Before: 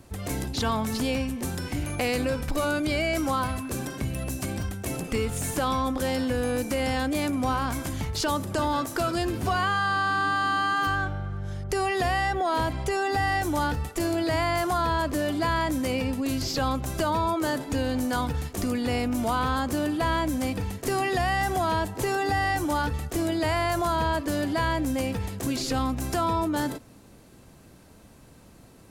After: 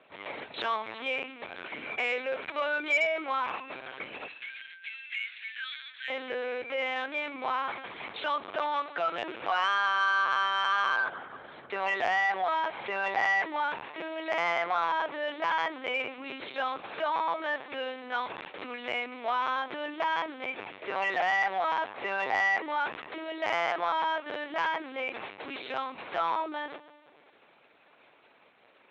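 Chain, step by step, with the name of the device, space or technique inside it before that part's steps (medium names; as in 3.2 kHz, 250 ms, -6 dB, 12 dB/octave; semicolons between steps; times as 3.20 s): 4.27–6.10 s: elliptic high-pass 1.6 kHz, stop band 40 dB; Schroeder reverb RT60 1.9 s, combs from 30 ms, DRR 15 dB; talking toy (LPC vocoder at 8 kHz pitch kept; high-pass 620 Hz 12 dB/octave; peaking EQ 2.3 kHz +6.5 dB 0.3 oct; saturation -16.5 dBFS, distortion -21 dB)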